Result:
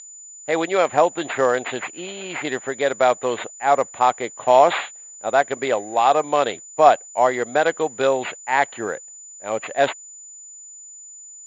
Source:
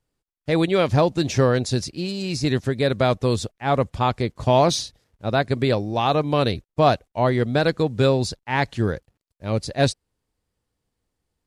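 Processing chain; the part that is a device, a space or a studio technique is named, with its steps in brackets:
toy sound module (linearly interpolated sample-rate reduction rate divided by 6×; switching amplifier with a slow clock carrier 7,000 Hz; loudspeaker in its box 540–4,600 Hz, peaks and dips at 750 Hz +4 dB, 2,000 Hz +3 dB, 3,800 Hz +4 dB)
level +4.5 dB

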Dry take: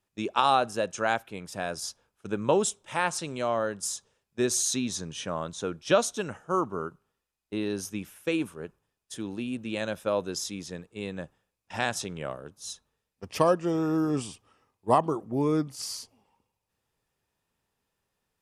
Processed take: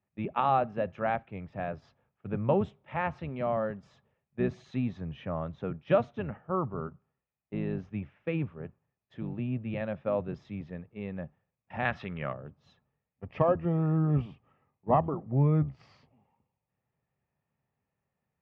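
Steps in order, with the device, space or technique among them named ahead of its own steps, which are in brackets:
0:11.85–0:12.33: flat-topped bell 2,400 Hz +8.5 dB 2.6 octaves
sub-octave bass pedal (sub-octave generator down 1 octave, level −5 dB; loudspeaker in its box 79–2,100 Hz, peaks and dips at 140 Hz +6 dB, 320 Hz −7 dB, 450 Hz −5 dB, 1,000 Hz −6 dB, 1,500 Hz −9 dB)

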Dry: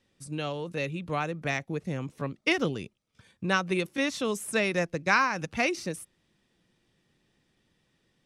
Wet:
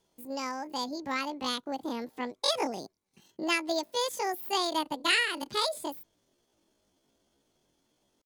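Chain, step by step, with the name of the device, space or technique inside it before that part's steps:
chipmunk voice (pitch shifter +10 semitones)
level −2 dB

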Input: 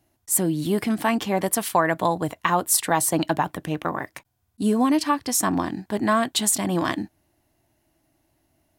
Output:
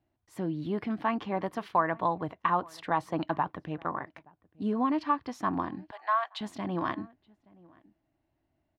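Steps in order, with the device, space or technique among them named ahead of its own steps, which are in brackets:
shout across a valley (high-frequency loss of the air 280 metres; slap from a distant wall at 150 metres, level −24 dB)
0:05.91–0:06.41: Butterworth high-pass 680 Hz 36 dB per octave
dynamic equaliser 1,100 Hz, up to +7 dB, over −38 dBFS, Q 1.9
level −8.5 dB

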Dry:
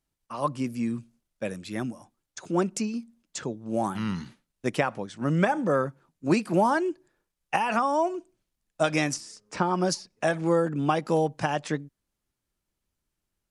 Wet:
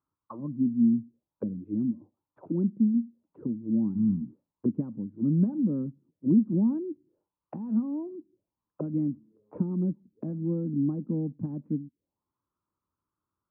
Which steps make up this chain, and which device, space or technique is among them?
envelope filter bass rig (envelope-controlled low-pass 230–1,200 Hz down, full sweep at −30.5 dBFS; loudspeaker in its box 81–2,100 Hz, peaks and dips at 97 Hz +6 dB, 300 Hz +5 dB, 710 Hz −8 dB, 1,000 Hz +4 dB, 1,800 Hz −7 dB)
level −5.5 dB

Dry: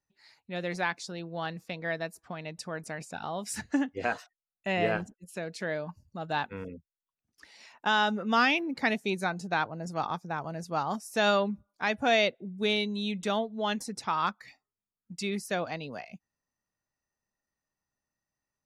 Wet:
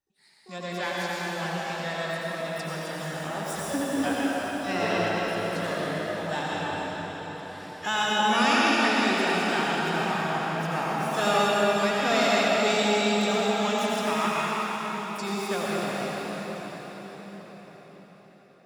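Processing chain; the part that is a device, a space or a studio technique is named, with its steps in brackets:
shimmer-style reverb (pitch-shifted copies added +12 semitones −7 dB; convolution reverb RT60 5.9 s, pre-delay 74 ms, DRR −6.5 dB)
level −3.5 dB

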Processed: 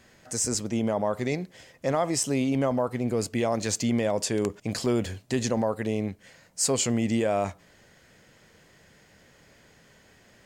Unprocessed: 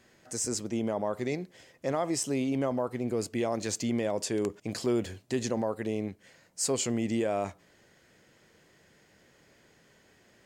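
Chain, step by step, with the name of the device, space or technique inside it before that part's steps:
low shelf boost with a cut just above (low-shelf EQ 65 Hz +7 dB; parametric band 350 Hz −4.5 dB 0.54 octaves)
level +5 dB

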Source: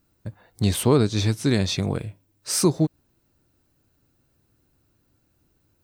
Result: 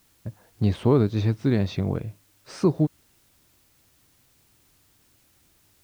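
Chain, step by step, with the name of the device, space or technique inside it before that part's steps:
cassette deck with a dirty head (head-to-tape spacing loss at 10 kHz 31 dB; tape wow and flutter; white noise bed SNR 36 dB)

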